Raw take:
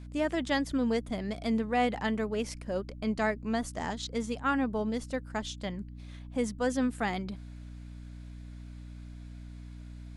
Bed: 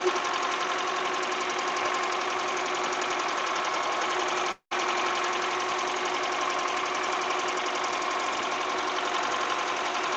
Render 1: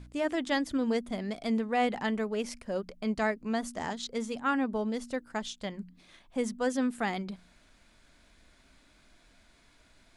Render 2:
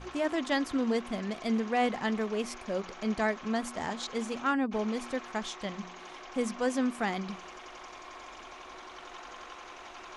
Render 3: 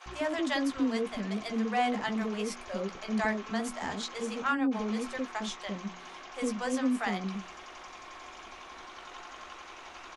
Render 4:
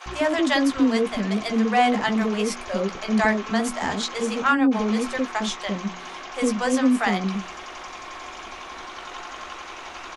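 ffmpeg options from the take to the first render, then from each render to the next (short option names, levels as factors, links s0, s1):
-af "bandreject=f=60:t=h:w=4,bandreject=f=120:t=h:w=4,bandreject=f=180:t=h:w=4,bandreject=f=240:t=h:w=4,bandreject=f=300:t=h:w=4"
-filter_complex "[1:a]volume=0.126[s0];[0:a][s0]amix=inputs=2:normalize=0"
-filter_complex "[0:a]asplit=2[s0][s1];[s1]adelay=15,volume=0.398[s2];[s0][s2]amix=inputs=2:normalize=0,acrossover=split=560[s3][s4];[s3]adelay=60[s5];[s5][s4]amix=inputs=2:normalize=0"
-af "volume=2.99"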